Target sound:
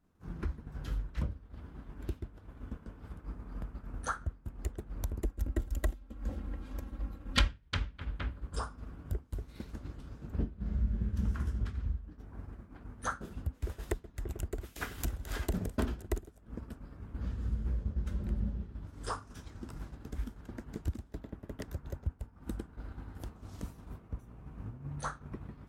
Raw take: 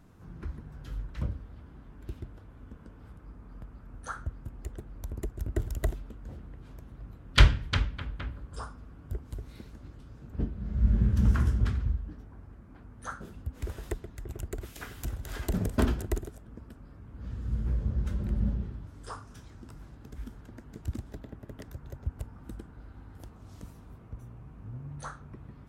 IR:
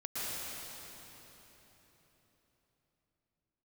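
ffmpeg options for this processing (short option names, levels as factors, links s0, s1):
-filter_complex "[0:a]acompressor=threshold=0.00708:ratio=6,equalizer=f=120:w=6.4:g=-8,agate=range=0.0224:threshold=0.01:ratio=3:detection=peak,asettb=1/sr,asplit=3[s0][s1][s2];[s0]atrim=end=5.244[s3];[s1]atrim=start=5.24:end=7.48,asetpts=PTS-STARTPTS,afade=t=in:d=0.004:c=qsin,afade=t=out:st=2.236:d=0.004:c=qsin,aecho=1:1:3.7:0.65,atrim=end_sample=98784[s4];[s2]atrim=start=7.476[s5];[s3][s4]acrossfade=d=0.004:c1=hsin:c2=qsin[s6];[s6][s5]acrossfade=d=0.004:c1=qsin:c2=hsin,volume=5.31"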